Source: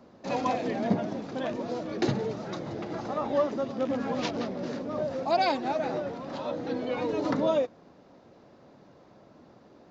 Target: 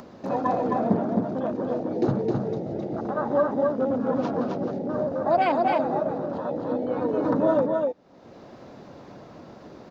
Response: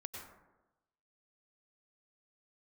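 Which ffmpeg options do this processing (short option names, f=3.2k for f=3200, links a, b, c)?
-af "afwtdn=0.0282,acompressor=mode=upward:threshold=-31dB:ratio=2.5,aecho=1:1:263:0.708,volume=3.5dB"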